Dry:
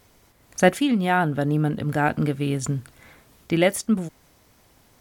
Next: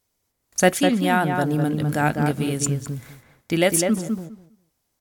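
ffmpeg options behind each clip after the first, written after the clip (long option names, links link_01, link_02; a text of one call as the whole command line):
ffmpeg -i in.wav -filter_complex "[0:a]agate=range=-21dB:threshold=-50dB:ratio=16:detection=peak,bass=frequency=250:gain=-1,treble=frequency=4000:gain=9,asplit=2[link_01][link_02];[link_02]adelay=203,lowpass=frequency=1600:poles=1,volume=-4dB,asplit=2[link_03][link_04];[link_04]adelay=203,lowpass=frequency=1600:poles=1,volume=0.16,asplit=2[link_05][link_06];[link_06]adelay=203,lowpass=frequency=1600:poles=1,volume=0.16[link_07];[link_03][link_05][link_07]amix=inputs=3:normalize=0[link_08];[link_01][link_08]amix=inputs=2:normalize=0" out.wav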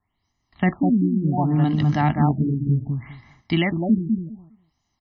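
ffmpeg -i in.wav -filter_complex "[0:a]aecho=1:1:1:0.92,acrossover=split=280[link_01][link_02];[link_02]alimiter=limit=-13.5dB:level=0:latency=1:release=24[link_03];[link_01][link_03]amix=inputs=2:normalize=0,afftfilt=real='re*lt(b*sr/1024,410*pow(7000/410,0.5+0.5*sin(2*PI*0.67*pts/sr)))':imag='im*lt(b*sr/1024,410*pow(7000/410,0.5+0.5*sin(2*PI*0.67*pts/sr)))':win_size=1024:overlap=0.75" out.wav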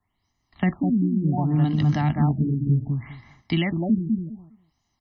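ffmpeg -i in.wav -filter_complex "[0:a]acrossover=split=220|3000[link_01][link_02][link_03];[link_02]acompressor=threshold=-28dB:ratio=3[link_04];[link_01][link_04][link_03]amix=inputs=3:normalize=0" out.wav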